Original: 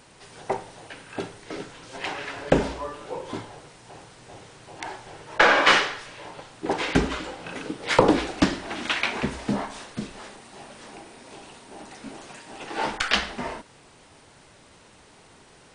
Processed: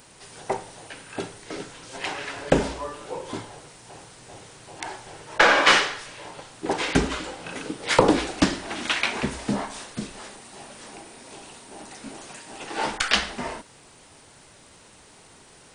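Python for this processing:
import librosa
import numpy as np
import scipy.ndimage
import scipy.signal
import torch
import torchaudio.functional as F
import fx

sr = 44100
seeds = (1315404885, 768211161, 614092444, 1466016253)

y = fx.high_shelf(x, sr, hz=7600.0, db=11.5)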